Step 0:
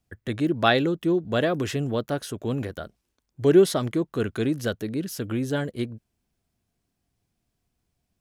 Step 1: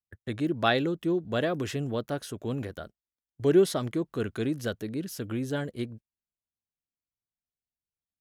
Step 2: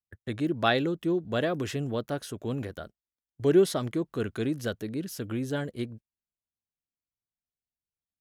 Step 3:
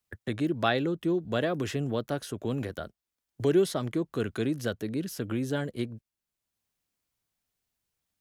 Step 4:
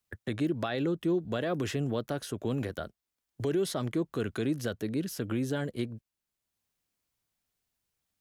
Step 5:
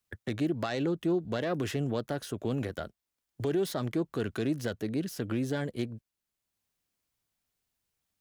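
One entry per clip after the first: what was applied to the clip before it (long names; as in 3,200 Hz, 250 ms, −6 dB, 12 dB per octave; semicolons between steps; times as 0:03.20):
noise gate −40 dBFS, range −23 dB; level −4.5 dB
no processing that can be heard
multiband upward and downward compressor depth 40%
brickwall limiter −21 dBFS, peak gain reduction 11 dB
phase distortion by the signal itself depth 0.061 ms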